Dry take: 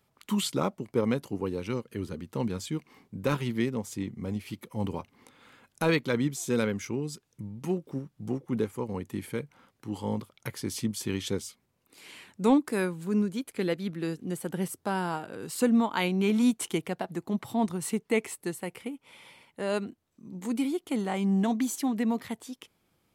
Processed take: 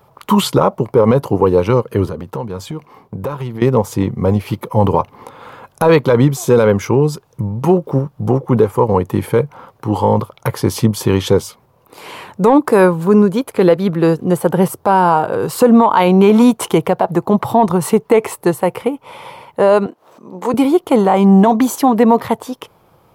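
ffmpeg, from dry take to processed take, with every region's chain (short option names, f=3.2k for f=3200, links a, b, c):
-filter_complex "[0:a]asettb=1/sr,asplit=3[a][b][c];[a]atrim=end=2.064[d];[b]atrim=start=2.06:end=3.62,asetpts=PTS-STARTPTS,afade=t=in:d=0.004:c=qsin,afade=t=out:st=1.556:d=0.004:c=qsin,agate=range=-7dB:threshold=-54dB:ratio=16:release=100:detection=peak,acompressor=threshold=-40dB:ratio=8:attack=3.2:release=140:knee=1:detection=peak[e];[c]atrim=start=3.616[f];[d][e]acrossfade=d=0.004:c1=hsin:c2=qsin[g];[g][f]acrossfade=d=0.004:c1=qsin:c2=hsin,asettb=1/sr,asplit=3[h][i][j];[h]atrim=end=19.864[k];[i]atrim=start=19.86:end=20.54,asetpts=PTS-STARTPTS,afade=t=in:d=0.004:c=qsin,afade=t=out:st=0.676:d=0.004:c=qsin,highshelf=f=11k:g=-10.5,acompressor=mode=upward:threshold=-47dB:ratio=2.5:attack=3.2:release=140:knee=2.83:detection=peak,highpass=350[l];[j]atrim=start=20.536[m];[k][l]acrossfade=d=0.004:c1=hsin:c2=qsin[n];[n][m]acrossfade=d=0.004:c1=qsin:c2=hsin,equalizer=f=125:t=o:w=1:g=6,equalizer=f=250:t=o:w=1:g=-5,equalizer=f=500:t=o:w=1:g=7,equalizer=f=1k:t=o:w=1:g=10,equalizer=f=2k:t=o:w=1:g=-5,equalizer=f=4k:t=o:w=1:g=-3,equalizer=f=8k:t=o:w=1:g=-8,acontrast=33,alimiter=level_in=12.5dB:limit=-1dB:release=50:level=0:latency=1,volume=-1dB"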